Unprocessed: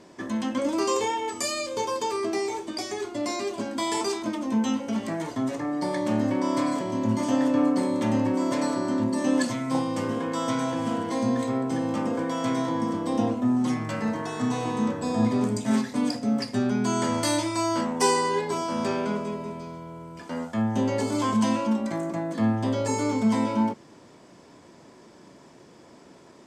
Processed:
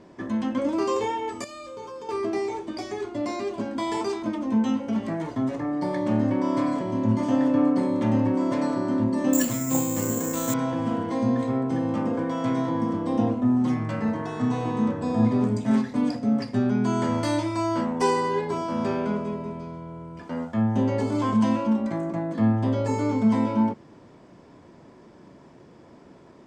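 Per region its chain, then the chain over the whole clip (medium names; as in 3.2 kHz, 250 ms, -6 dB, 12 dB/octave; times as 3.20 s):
1.44–2.09 s: feedback comb 58 Hz, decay 1.3 s, harmonics odd, mix 80% + level flattener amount 70%
9.33–10.54 s: low-pass 6.6 kHz 24 dB/octave + peaking EQ 1 kHz -4.5 dB 0.6 oct + careless resampling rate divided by 6×, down none, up zero stuff
whole clip: low-pass 2.2 kHz 6 dB/octave; bass shelf 140 Hz +7.5 dB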